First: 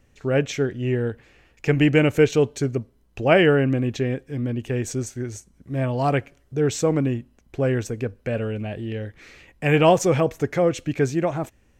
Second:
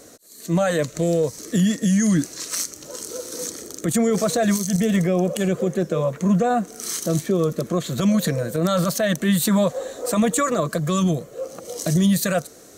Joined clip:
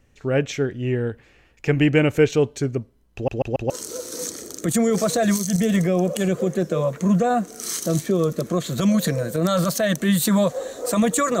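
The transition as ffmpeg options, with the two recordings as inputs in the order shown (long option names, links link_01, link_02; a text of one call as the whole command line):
ffmpeg -i cue0.wav -i cue1.wav -filter_complex "[0:a]apad=whole_dur=11.4,atrim=end=11.4,asplit=4[link_01][link_02][link_03][link_04];[link_01]atrim=end=3.282[link_05];[link_02]atrim=start=3.138:end=3.282[link_06];[link_03]atrim=start=3.138:end=3.282[link_07];[link_04]atrim=start=3.138:end=3.282[link_08];[1:a]atrim=start=2.898:end=10.6[link_09];[link_05][link_06]acrossfade=duration=0.004:curve1=hsin:curve2=hsin[link_10];[link_10][link_07]acrossfade=duration=0.004:curve1=hsin:curve2=hsin[link_11];[link_11][link_08]acrossfade=duration=0.004:curve1=hsin:curve2=hsin[link_12];[link_12][link_09]acrossfade=duration=0.004:curve1=hsin:curve2=hsin" out.wav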